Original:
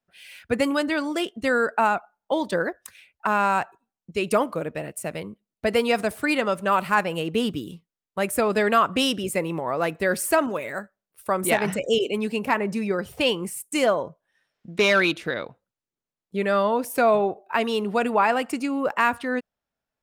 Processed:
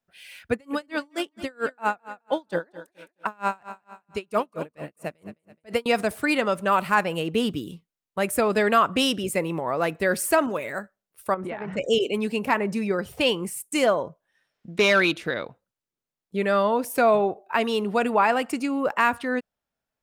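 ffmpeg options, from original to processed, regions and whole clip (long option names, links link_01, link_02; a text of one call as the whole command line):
ffmpeg -i in.wav -filter_complex "[0:a]asettb=1/sr,asplit=3[link_01][link_02][link_03];[link_01]atrim=end=0.524[link_04];[link_02]atrim=start=0.52:end=5.86,asetpts=PTS-STARTPTS,afade=type=in:duration=0.004:curve=qsin,afade=type=out:start_time=5.336:duration=0.004:curve=qsin,aecho=1:1:212|424|636|848:0.2|0.0898|0.0404|0.0182,atrim=end_sample=235494,aeval=exprs='val(0)*pow(10,-35*(0.5-0.5*cos(2*PI*4.4*n/s))/20)':channel_layout=same[link_05];[link_03]atrim=start=5.856[link_06];[link_04][link_05]acrossfade=duration=0.004:curve1=hsin:curve2=qsin[link_07];[link_07][link_06]acrossfade=duration=0.004:curve1=qsin:curve2=hsin,asettb=1/sr,asplit=3[link_08][link_09][link_10];[link_08]atrim=end=11.344[link_11];[link_09]atrim=start=11.34:end=11.77,asetpts=PTS-STARTPTS,afade=type=in:duration=0.004:curve=qsin,afade=type=out:start_time=0.426:duration=0.004:curve=qsin,lowpass=1900,acompressor=threshold=-28dB:ratio=12:attack=3.2:release=140:knee=1:detection=peak[link_12];[link_10]atrim=start=11.766[link_13];[link_11][link_12]acrossfade=duration=0.004:curve1=hsin:curve2=qsin[link_14];[link_14][link_13]acrossfade=duration=0.004:curve1=qsin:curve2=hsin" out.wav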